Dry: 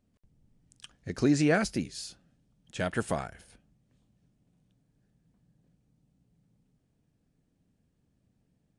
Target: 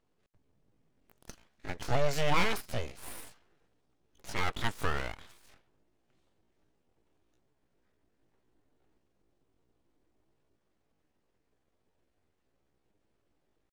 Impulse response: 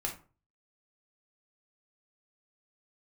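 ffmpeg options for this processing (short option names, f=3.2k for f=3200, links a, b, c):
-filter_complex "[0:a]atempo=0.64,asplit=2[a][b];[b]highpass=f=720:p=1,volume=11dB,asoftclip=type=tanh:threshold=-12.5dB[c];[a][c]amix=inputs=2:normalize=0,lowpass=f=2.3k:p=1,volume=-6dB,aeval=exprs='abs(val(0))':c=same"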